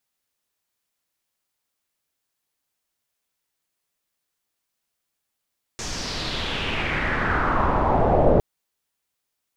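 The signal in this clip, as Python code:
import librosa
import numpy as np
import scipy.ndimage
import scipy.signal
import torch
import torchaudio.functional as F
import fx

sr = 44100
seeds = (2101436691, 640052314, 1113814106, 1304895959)

y = fx.riser_noise(sr, seeds[0], length_s=2.61, colour='pink', kind='lowpass', start_hz=6600.0, end_hz=540.0, q=3.1, swell_db=16, law='exponential')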